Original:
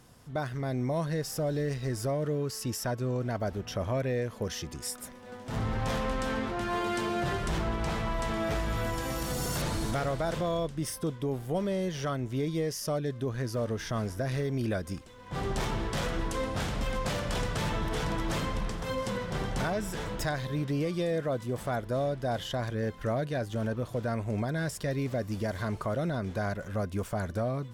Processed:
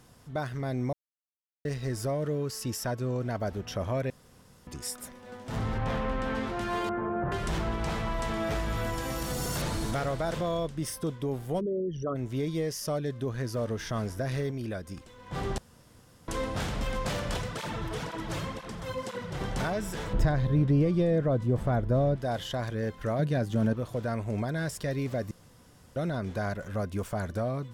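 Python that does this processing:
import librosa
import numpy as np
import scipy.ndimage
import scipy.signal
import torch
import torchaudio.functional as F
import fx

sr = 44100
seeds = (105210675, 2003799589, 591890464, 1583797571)

y = fx.bass_treble(x, sr, bass_db=1, treble_db=-13, at=(5.78, 6.35))
y = fx.lowpass(y, sr, hz=1500.0, slope=24, at=(6.89, 7.32))
y = fx.envelope_sharpen(y, sr, power=3.0, at=(11.59, 12.15), fade=0.02)
y = fx.flanger_cancel(y, sr, hz=2.0, depth_ms=5.1, at=(17.37, 19.41))
y = fx.tilt_eq(y, sr, slope=-3.0, at=(20.13, 22.16))
y = fx.peak_eq(y, sr, hz=180.0, db=8.5, octaves=1.6, at=(23.19, 23.73))
y = fx.edit(y, sr, fx.silence(start_s=0.93, length_s=0.72),
    fx.room_tone_fill(start_s=4.1, length_s=0.57),
    fx.clip_gain(start_s=14.51, length_s=0.46, db=-4.5),
    fx.room_tone_fill(start_s=15.58, length_s=0.7),
    fx.room_tone_fill(start_s=25.31, length_s=0.65), tone=tone)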